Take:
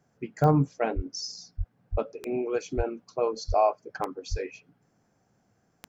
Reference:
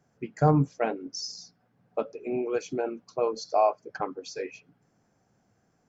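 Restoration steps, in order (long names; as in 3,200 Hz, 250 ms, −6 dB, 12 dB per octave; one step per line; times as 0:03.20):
click removal
high-pass at the plosives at 0:00.95/0:01.57/0:01.91/0:02.76/0:03.47/0:04.30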